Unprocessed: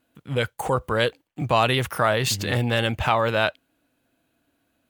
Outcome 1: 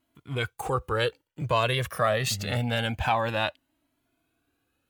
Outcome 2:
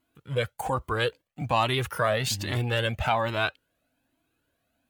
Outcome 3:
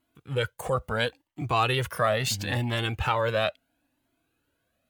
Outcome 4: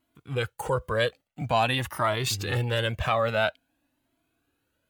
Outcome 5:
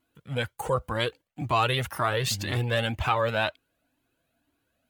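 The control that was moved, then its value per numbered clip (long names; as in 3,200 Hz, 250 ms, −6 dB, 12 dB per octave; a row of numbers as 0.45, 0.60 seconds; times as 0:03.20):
flanger whose copies keep moving one way, speed: 0.26, 1.2, 0.74, 0.49, 2 Hertz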